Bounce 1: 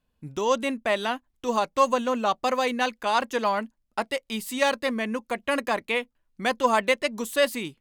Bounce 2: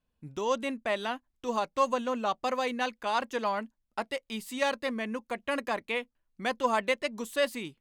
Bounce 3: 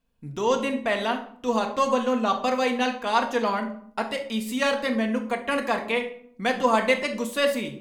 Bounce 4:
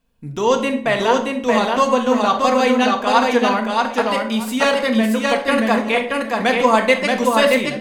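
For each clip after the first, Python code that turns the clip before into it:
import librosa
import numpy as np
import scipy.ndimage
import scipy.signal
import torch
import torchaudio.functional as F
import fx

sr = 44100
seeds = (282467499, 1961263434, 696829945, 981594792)

y1 = fx.high_shelf(x, sr, hz=9600.0, db=-6.0)
y1 = y1 * 10.0 ** (-5.5 / 20.0)
y2 = fx.room_shoebox(y1, sr, seeds[0], volume_m3=920.0, walls='furnished', distance_m=1.7)
y2 = y2 * 10.0 ** (4.5 / 20.0)
y3 = fx.echo_feedback(y2, sr, ms=627, feedback_pct=17, wet_db=-3.0)
y3 = y3 * 10.0 ** (6.5 / 20.0)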